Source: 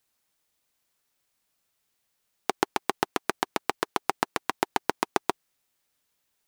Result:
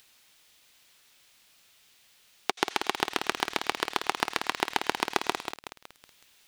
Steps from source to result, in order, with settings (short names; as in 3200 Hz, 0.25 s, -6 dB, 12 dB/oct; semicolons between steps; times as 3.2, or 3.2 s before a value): bell 3100 Hz +9 dB 1.8 oct; upward compressor, threshold -43 dBFS; on a send at -20.5 dB: weighting filter ITU-R 468 + reverb, pre-delay 76 ms; on the sum: lo-fi delay 0.186 s, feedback 55%, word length 5-bit, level -7 dB; gain -4 dB